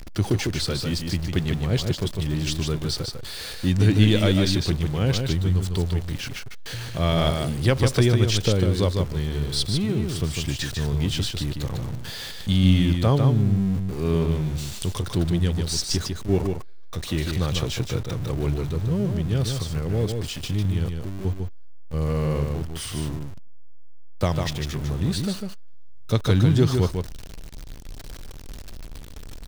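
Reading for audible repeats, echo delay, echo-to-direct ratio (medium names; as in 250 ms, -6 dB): 1, 150 ms, -5.0 dB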